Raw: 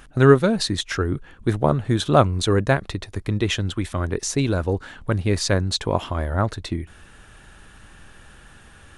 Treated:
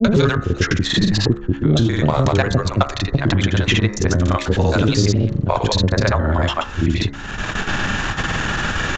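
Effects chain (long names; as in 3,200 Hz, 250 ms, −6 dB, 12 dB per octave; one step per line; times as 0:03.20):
slices reordered back to front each 91 ms, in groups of 6
multiband delay without the direct sound lows, highs 70 ms, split 470 Hz
noise gate with hold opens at −37 dBFS
granular cloud, grains 20 per second, pitch spread up and down by 0 semitones
hum removal 69.54 Hz, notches 30
in parallel at −6 dB: soft clipping −20.5 dBFS, distortion −9 dB
on the sum: downsampling to 16,000 Hz
multiband upward and downward compressor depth 100%
level +4.5 dB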